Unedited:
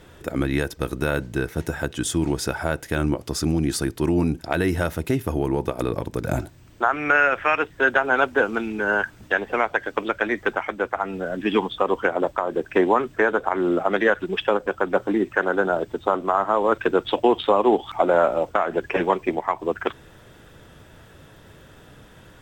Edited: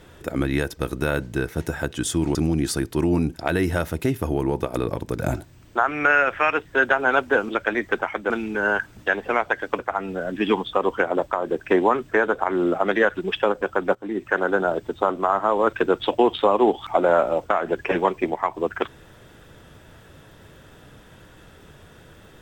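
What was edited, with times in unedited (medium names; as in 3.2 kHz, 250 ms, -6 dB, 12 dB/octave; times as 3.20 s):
2.35–3.40 s: delete
10.03–10.84 s: move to 8.54 s
15.00–15.41 s: fade in, from -19.5 dB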